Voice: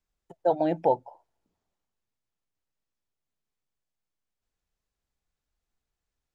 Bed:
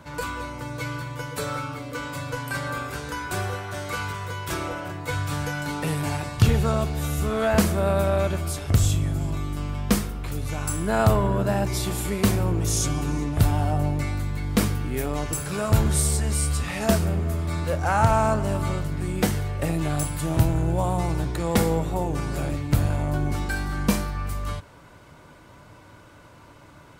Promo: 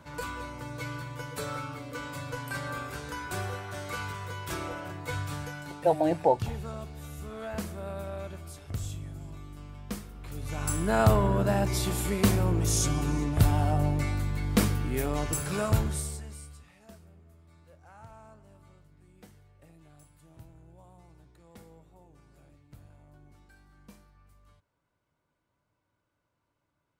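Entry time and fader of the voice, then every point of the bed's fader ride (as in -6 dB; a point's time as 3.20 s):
5.40 s, 0.0 dB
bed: 5.18 s -6 dB
5.92 s -15.5 dB
10.04 s -15.5 dB
10.69 s -2.5 dB
15.62 s -2.5 dB
16.82 s -31 dB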